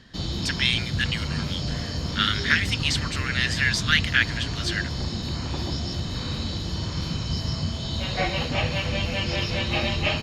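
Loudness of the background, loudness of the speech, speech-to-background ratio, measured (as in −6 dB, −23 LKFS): −28.0 LKFS, −25.0 LKFS, 3.0 dB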